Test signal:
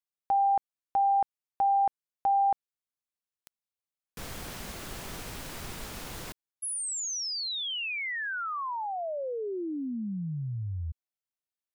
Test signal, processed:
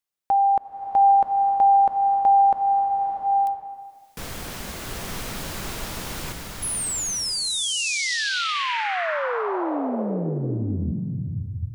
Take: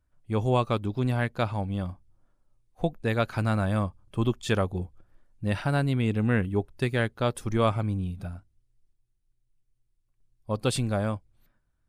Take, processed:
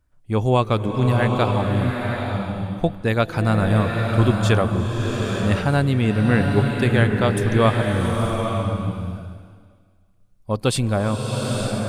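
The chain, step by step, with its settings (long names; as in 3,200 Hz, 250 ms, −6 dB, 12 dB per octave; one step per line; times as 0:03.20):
slow-attack reverb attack 890 ms, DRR 1.5 dB
level +6 dB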